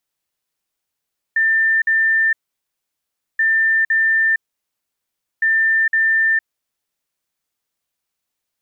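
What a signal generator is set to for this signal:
beeps in groups sine 1,790 Hz, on 0.46 s, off 0.05 s, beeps 2, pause 1.06 s, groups 3, −12.5 dBFS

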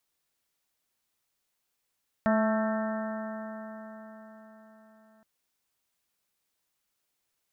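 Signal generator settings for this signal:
stiff-string partials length 2.97 s, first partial 217 Hz, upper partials −19/−1.5/−10/−13/−10/−13.5/−12.5 dB, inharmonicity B 0.0013, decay 4.72 s, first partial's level −23.5 dB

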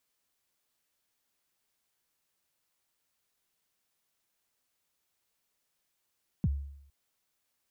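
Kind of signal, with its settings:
synth kick length 0.46 s, from 220 Hz, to 70 Hz, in 38 ms, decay 0.74 s, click off, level −22 dB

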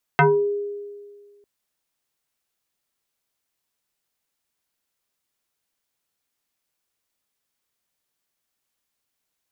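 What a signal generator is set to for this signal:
two-operator FM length 1.25 s, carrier 408 Hz, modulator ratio 1.37, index 3.5, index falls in 0.35 s exponential, decay 1.76 s, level −10.5 dB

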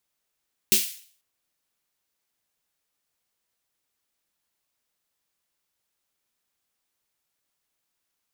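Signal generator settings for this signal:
synth snare length 0.49 s, tones 210 Hz, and 370 Hz, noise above 2,400 Hz, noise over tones 9.5 dB, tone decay 0.19 s, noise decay 0.49 s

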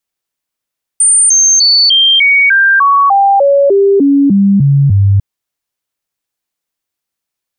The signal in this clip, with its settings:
stepped sweep 8,970 Hz down, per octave 2, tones 14, 0.30 s, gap 0.00 s −4.5 dBFS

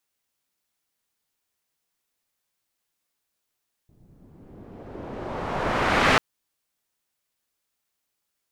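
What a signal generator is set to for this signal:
filter sweep on noise white, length 2.29 s lowpass, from 150 Hz, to 2,000 Hz, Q 0.9, exponential, gain ramp +29 dB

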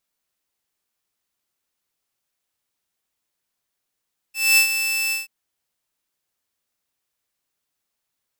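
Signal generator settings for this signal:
note with an ADSR envelope saw 2,640 Hz, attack 233 ms, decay 95 ms, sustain −9.5 dB, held 0.78 s, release 151 ms −8.5 dBFS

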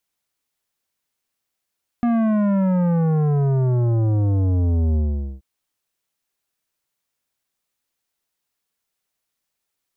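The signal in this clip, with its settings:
bass drop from 240 Hz, over 3.38 s, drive 12 dB, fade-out 0.45 s, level −17 dB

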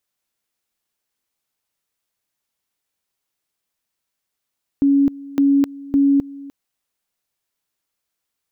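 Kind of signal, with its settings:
tone at two levels in turn 279 Hz −11 dBFS, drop 20.5 dB, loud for 0.26 s, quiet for 0.30 s, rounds 3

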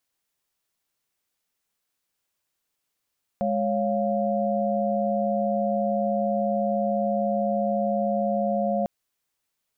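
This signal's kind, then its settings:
held notes G#3/C#5/F5 sine, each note −26 dBFS 5.45 s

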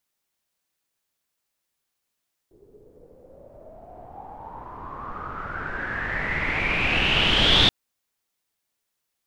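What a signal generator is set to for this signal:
filter sweep on noise pink, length 5.18 s lowpass, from 380 Hz, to 3,600 Hz, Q 8.1, exponential, gain ramp +37.5 dB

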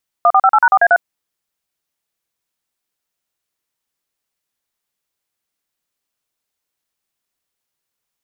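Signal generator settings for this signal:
touch tones "1458#4A3", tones 54 ms, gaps 40 ms, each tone −9.5 dBFS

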